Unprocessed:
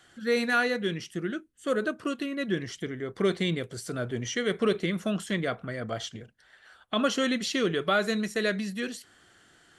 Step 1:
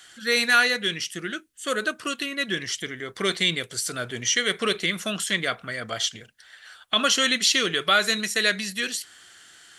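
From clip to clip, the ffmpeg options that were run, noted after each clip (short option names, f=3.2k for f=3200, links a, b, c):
-af "tiltshelf=f=1.2k:g=-9,volume=5dB"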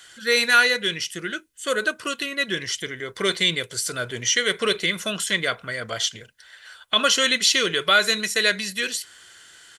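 -af "aecho=1:1:2:0.31,volume=1.5dB"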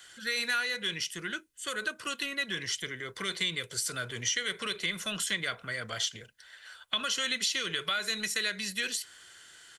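-filter_complex "[0:a]acompressor=threshold=-21dB:ratio=10,acrossover=split=210|1000|4600[a][b][c][d];[b]asoftclip=type=tanh:threshold=-37dB[e];[a][e][c][d]amix=inputs=4:normalize=0,volume=-5dB"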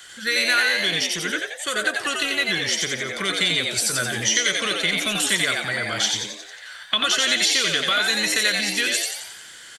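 -filter_complex "[0:a]asplit=8[a][b][c][d][e][f][g][h];[b]adelay=89,afreqshift=97,volume=-3dB[i];[c]adelay=178,afreqshift=194,volume=-8.7dB[j];[d]adelay=267,afreqshift=291,volume=-14.4dB[k];[e]adelay=356,afreqshift=388,volume=-20dB[l];[f]adelay=445,afreqshift=485,volume=-25.7dB[m];[g]adelay=534,afreqshift=582,volume=-31.4dB[n];[h]adelay=623,afreqshift=679,volume=-37.1dB[o];[a][i][j][k][l][m][n][o]amix=inputs=8:normalize=0,volume=9dB"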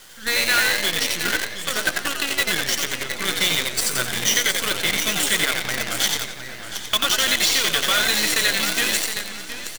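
-af "aecho=1:1:717|1434|2151|2868:0.447|0.143|0.0457|0.0146,acrusher=bits=4:dc=4:mix=0:aa=0.000001"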